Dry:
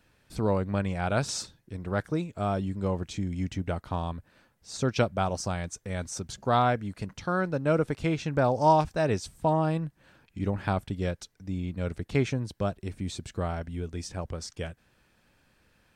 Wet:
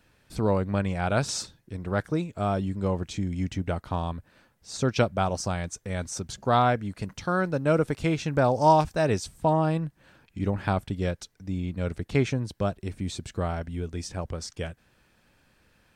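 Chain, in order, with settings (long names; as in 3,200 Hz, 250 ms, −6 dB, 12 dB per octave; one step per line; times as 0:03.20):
0:07.03–0:09.24: high-shelf EQ 7,700 Hz +6 dB
level +2 dB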